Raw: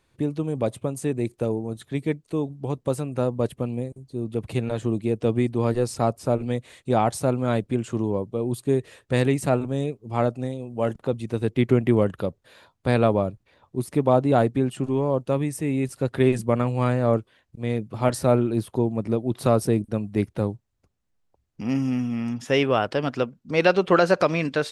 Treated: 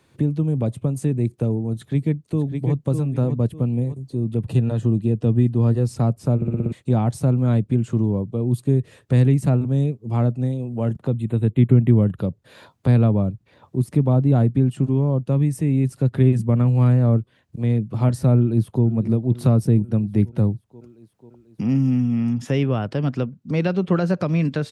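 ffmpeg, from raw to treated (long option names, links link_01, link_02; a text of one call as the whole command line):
ffmpeg -i in.wav -filter_complex "[0:a]asplit=2[link_01][link_02];[link_02]afade=type=in:start_time=1.72:duration=0.01,afade=type=out:start_time=2.83:duration=0.01,aecho=0:1:600|1200|1800:0.530884|0.132721|0.0331803[link_03];[link_01][link_03]amix=inputs=2:normalize=0,asettb=1/sr,asplit=3[link_04][link_05][link_06];[link_04]atrim=end=4.444[link_07];[link_05]atrim=start=4.44:end=5.82,asetpts=PTS-STARTPTS,afade=type=in:duration=0.004:curve=qsin,afade=type=out:start_time=1.376:duration=0.004:curve=qsin,asuperstop=centerf=2200:order=12:qfactor=7.8[link_08];[link_06]atrim=start=5.816[link_09];[link_07][link_08]acrossfade=duration=0.004:curve1=hsin:curve2=qsin[link_10];[link_10][link_09]acrossfade=duration=0.004:curve1=qsin:curve2=hsin,asettb=1/sr,asplit=3[link_11][link_12][link_13];[link_11]atrim=end=11.114[link_14];[link_12]atrim=start=11.11:end=12.15,asetpts=PTS-STARTPTS,afade=type=in:duration=0.004:curve=qsin,afade=type=out:start_time=1.036:duration=0.004:curve=qsin,asuperstop=centerf=5400:order=20:qfactor=2[link_15];[link_13]atrim=start=12.146[link_16];[link_14][link_15]acrossfade=duration=0.004:curve1=hsin:curve2=qsin[link_17];[link_17][link_16]acrossfade=duration=0.004:curve1=qsin:curve2=hsin,asplit=2[link_18][link_19];[link_19]afade=type=in:start_time=18.36:duration=0.01,afade=type=out:start_time=18.84:duration=0.01,aecho=0:1:490|980|1470|1960|2450|2940:0.149624|0.0897741|0.0538645|0.0323187|0.0193912|0.0116347[link_20];[link_18][link_20]amix=inputs=2:normalize=0,asplit=7[link_21][link_22][link_23][link_24][link_25][link_26][link_27];[link_21]atrim=end=6.422[link_28];[link_22]atrim=start=6.358:end=6.422[link_29];[link_23]atrim=start=6.358:end=6.422[link_30];[link_24]atrim=start=6.358:end=6.422[link_31];[link_25]atrim=start=6.358:end=6.422[link_32];[link_26]atrim=start=6.358:end=6.422[link_33];[link_27]atrim=start=6.718[link_34];[link_28][link_29]acrossfade=duration=0.004:curve1=hsin:curve2=hsin[link_35];[link_35][link_30]acrossfade=duration=0.004:curve1=hsin:curve2=hsin[link_36];[link_36][link_31]acrossfade=duration=0.004:curve1=hsin:curve2=hsin[link_37];[link_37][link_32]acrossfade=duration=0.004:curve1=hsin:curve2=hsin[link_38];[link_38][link_33]acrossfade=duration=0.004:curve1=hsin:curve2=hsin[link_39];[link_39][link_34]acrossfade=duration=0.004:curve1=hsin:curve2=hsin,highpass=110,lowshelf=frequency=330:gain=7,acrossover=split=200[link_40][link_41];[link_41]acompressor=threshold=-43dB:ratio=2[link_42];[link_40][link_42]amix=inputs=2:normalize=0,volume=6.5dB" out.wav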